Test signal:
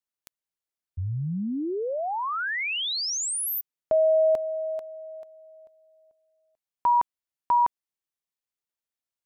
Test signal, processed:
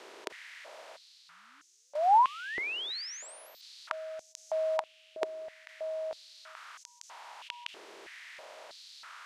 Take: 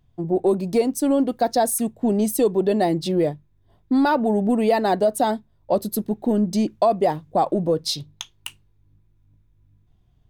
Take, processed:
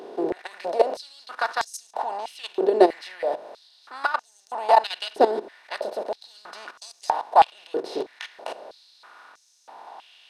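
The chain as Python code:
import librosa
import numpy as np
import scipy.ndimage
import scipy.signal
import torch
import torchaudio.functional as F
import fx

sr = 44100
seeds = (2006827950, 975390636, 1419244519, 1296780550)

y = fx.bin_compress(x, sr, power=0.4)
y = fx.tilt_eq(y, sr, slope=2.0)
y = fx.level_steps(y, sr, step_db=14)
y = fx.spacing_loss(y, sr, db_at_10k=25)
y = fx.filter_held_highpass(y, sr, hz=3.1, low_hz=390.0, high_hz=6300.0)
y = y * 10.0 ** (-1.0 / 20.0)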